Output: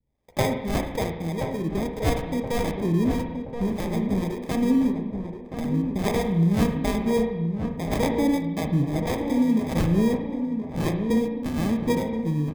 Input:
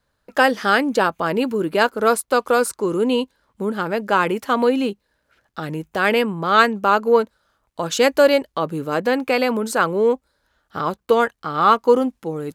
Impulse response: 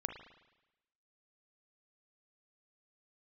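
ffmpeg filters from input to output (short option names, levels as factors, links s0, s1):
-filter_complex "[0:a]acrossover=split=450[s0][s1];[s0]aeval=exprs='val(0)*(1-1/2+1/2*cos(2*PI*1.7*n/s))':c=same[s2];[s1]aeval=exprs='val(0)*(1-1/2-1/2*cos(2*PI*1.7*n/s))':c=same[s3];[s2][s3]amix=inputs=2:normalize=0,asubboost=boost=7:cutoff=190,acrossover=split=460[s4][s5];[s5]acrusher=samples=31:mix=1:aa=0.000001[s6];[s4][s6]amix=inputs=2:normalize=0,asplit=2[s7][s8];[s8]adelay=1025,lowpass=f=1200:p=1,volume=0.473,asplit=2[s9][s10];[s10]adelay=1025,lowpass=f=1200:p=1,volume=0.53,asplit=2[s11][s12];[s12]adelay=1025,lowpass=f=1200:p=1,volume=0.53,asplit=2[s13][s14];[s14]adelay=1025,lowpass=f=1200:p=1,volume=0.53,asplit=2[s15][s16];[s16]adelay=1025,lowpass=f=1200:p=1,volume=0.53,asplit=2[s17][s18];[s18]adelay=1025,lowpass=f=1200:p=1,volume=0.53,asplit=2[s19][s20];[s20]adelay=1025,lowpass=f=1200:p=1,volume=0.53[s21];[s7][s9][s11][s13][s15][s17][s19][s21]amix=inputs=8:normalize=0[s22];[1:a]atrim=start_sample=2205[s23];[s22][s23]afir=irnorm=-1:irlink=0,volume=0.891"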